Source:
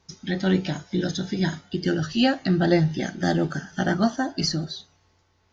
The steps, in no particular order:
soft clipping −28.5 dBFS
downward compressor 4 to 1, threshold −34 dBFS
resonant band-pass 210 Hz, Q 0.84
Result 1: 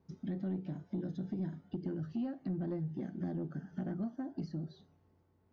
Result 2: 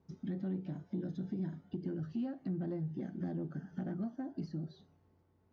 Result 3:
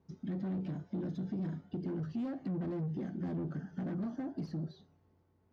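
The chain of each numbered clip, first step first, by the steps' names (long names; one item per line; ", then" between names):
downward compressor, then resonant band-pass, then soft clipping
downward compressor, then soft clipping, then resonant band-pass
soft clipping, then downward compressor, then resonant band-pass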